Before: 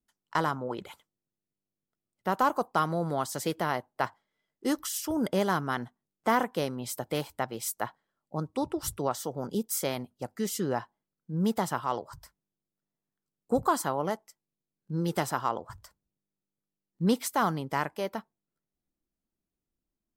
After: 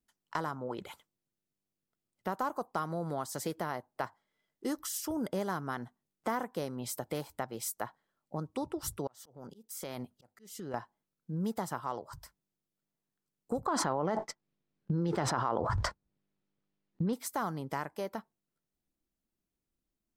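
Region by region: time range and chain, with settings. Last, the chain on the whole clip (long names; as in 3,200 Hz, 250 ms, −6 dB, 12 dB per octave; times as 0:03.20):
0:09.07–0:10.74: downward compressor 5 to 1, threshold −32 dBFS + volume swells 483 ms
0:13.66–0:17.13: low-pass filter 3,500 Hz + downward expander −55 dBFS + envelope flattener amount 100%
whole clip: dynamic equaliser 2,900 Hz, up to −6 dB, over −49 dBFS, Q 1.7; downward compressor 2 to 1, threshold −36 dBFS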